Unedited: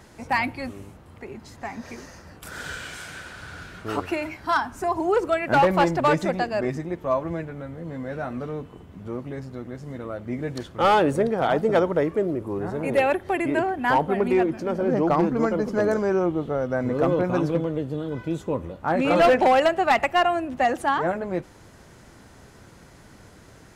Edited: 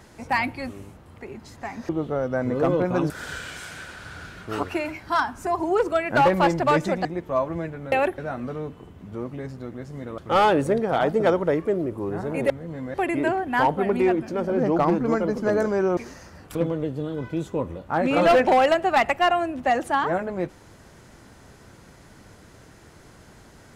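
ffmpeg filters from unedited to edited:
-filter_complex "[0:a]asplit=11[a][b][c][d][e][f][g][h][i][j][k];[a]atrim=end=1.892[l];[b]atrim=start=16.278:end=17.492[m];[c]atrim=start=2.468:end=6.422[n];[d]atrim=start=6.798:end=7.672[o];[e]atrim=start=12.988:end=13.252[p];[f]atrim=start=8.108:end=10.112[q];[g]atrim=start=10.668:end=12.992[r];[h]atrim=start=7.668:end=8.112[s];[i]atrim=start=13.248:end=16.282[t];[j]atrim=start=1.888:end=2.472[u];[k]atrim=start=17.488[v];[l][m]acrossfade=d=0.004:c1=hsin:c2=hsin[w];[w][n]acrossfade=d=0.004:c1=hsin:c2=hsin[x];[x][o]acrossfade=d=0.004:c1=hsin:c2=hsin[y];[y][p]acrossfade=d=0.004:c1=hsin:c2=hsin[z];[z][q]acrossfade=d=0.004:c1=hsin:c2=hsin[aa];[aa][r]acrossfade=d=0.004:c1=hsin:c2=hsin[ab];[ab][s]acrossfade=d=0.004:c1=hsin:c2=hsin[ac];[ac][t]acrossfade=d=0.004:c1=hsin:c2=hsin[ad];[ad][u]acrossfade=d=0.004:c1=hsin:c2=hsin[ae];[ae][v]acrossfade=d=0.004:c1=hsin:c2=hsin"

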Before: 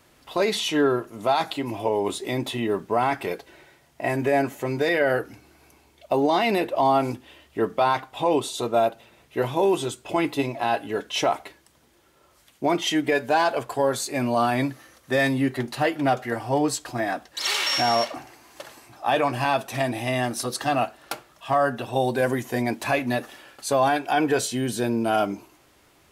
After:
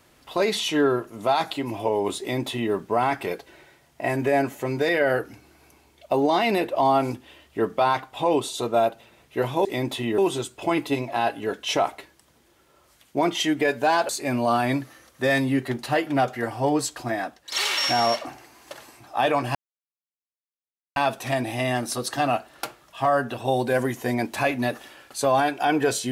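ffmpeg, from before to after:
-filter_complex "[0:a]asplit=6[a][b][c][d][e][f];[a]atrim=end=9.652[g];[b]atrim=start=2.198:end=2.732[h];[c]atrim=start=9.648:end=13.562[i];[d]atrim=start=13.978:end=17.41,asetpts=PTS-STARTPTS,afade=t=out:st=2.982:d=0.45:silence=0.354813[j];[e]atrim=start=17.41:end=19.44,asetpts=PTS-STARTPTS,afade=t=in:d=0.004:c=hsin:silence=0.354813,afade=t=out:st=2.026:d=0.004:c=hsin,apad=pad_dur=1.41[k];[f]atrim=start=19.44,asetpts=PTS-STARTPTS,afade=t=in:d=0.004:c=hsin[l];[g][h]acrossfade=d=0.004:c1=hsin:c2=hsin[m];[m][i]acrossfade=d=0.004:c1=hsin:c2=hsin[n];[j][k][l]concat=n=3:v=0:a=1[o];[n][o]acrossfade=d=0.004:c1=hsin:c2=hsin"

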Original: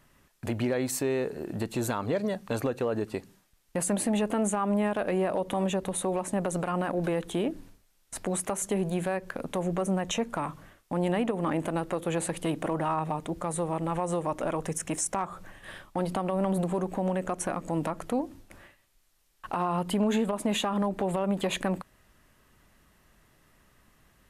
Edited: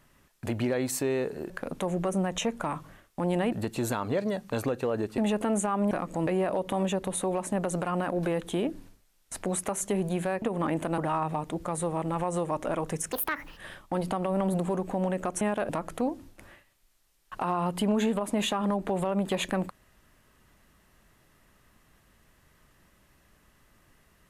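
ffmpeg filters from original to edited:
-filter_complex "[0:a]asplit=12[a][b][c][d][e][f][g][h][i][j][k][l];[a]atrim=end=1.502[m];[b]atrim=start=9.228:end=11.252[n];[c]atrim=start=1.498:end=3.162[o];[d]atrim=start=4.068:end=4.802[p];[e]atrim=start=17.448:end=17.812[q];[f]atrim=start=5.078:end=9.232[r];[g]atrim=start=11.248:end=11.812[s];[h]atrim=start=12.738:end=14.884[t];[i]atrim=start=14.88:end=15.61,asetpts=PTS-STARTPTS,asetrate=71442,aresample=44100,atrim=end_sample=19872,asetpts=PTS-STARTPTS[u];[j]atrim=start=15.606:end=17.452[v];[k]atrim=start=4.798:end=5.082[w];[l]atrim=start=17.808[x];[m][n]acrossfade=d=0.004:c1=hsin:c2=hsin[y];[y][o]acrossfade=d=0.004:c1=hsin:c2=hsin[z];[z][p]acrossfade=d=0.004:c1=hsin:c2=hsin[aa];[aa][q]acrossfade=d=0.004:c1=hsin:c2=hsin[ab];[ab][r]acrossfade=d=0.004:c1=hsin:c2=hsin[ac];[ac][s]acrossfade=d=0.004:c1=hsin:c2=hsin[ad];[ad][t]acrossfade=d=0.004:c1=hsin:c2=hsin[ae];[ae][u]acrossfade=d=0.004:c1=hsin:c2=hsin[af];[af][v]acrossfade=d=0.004:c1=hsin:c2=hsin[ag];[ag][w]acrossfade=d=0.004:c1=hsin:c2=hsin[ah];[ah][x]acrossfade=d=0.004:c1=hsin:c2=hsin"

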